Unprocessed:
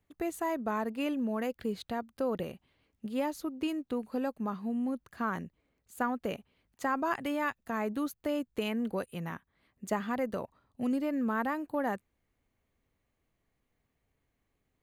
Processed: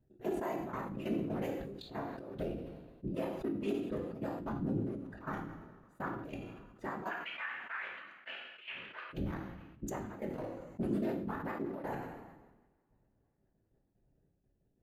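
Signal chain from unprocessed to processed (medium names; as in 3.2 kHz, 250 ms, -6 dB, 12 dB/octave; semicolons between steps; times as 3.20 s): local Wiener filter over 41 samples; 7.09–9.10 s: Chebyshev band-pass 1.5–3 kHz, order 2; compression, threshold -37 dBFS, peak gain reduction 10.5 dB; peak limiter -35.5 dBFS, peak gain reduction 10.5 dB; whisper effect; trance gate "x..xxxx..x.x." 185 bpm -12 dB; two-slope reverb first 0.48 s, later 3.2 s, from -27 dB, DRR 3.5 dB; decay stretcher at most 44 dB/s; trim +5 dB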